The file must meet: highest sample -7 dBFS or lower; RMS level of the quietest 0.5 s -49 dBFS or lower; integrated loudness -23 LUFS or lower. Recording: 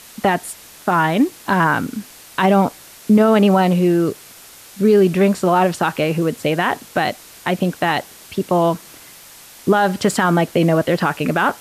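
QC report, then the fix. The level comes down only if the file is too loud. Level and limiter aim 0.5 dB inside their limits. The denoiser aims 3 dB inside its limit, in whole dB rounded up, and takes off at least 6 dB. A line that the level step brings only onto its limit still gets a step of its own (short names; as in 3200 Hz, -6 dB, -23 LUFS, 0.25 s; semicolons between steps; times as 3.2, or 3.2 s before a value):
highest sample -5.0 dBFS: fail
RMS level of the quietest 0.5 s -42 dBFS: fail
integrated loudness -17.5 LUFS: fail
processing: denoiser 6 dB, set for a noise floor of -42 dBFS; gain -6 dB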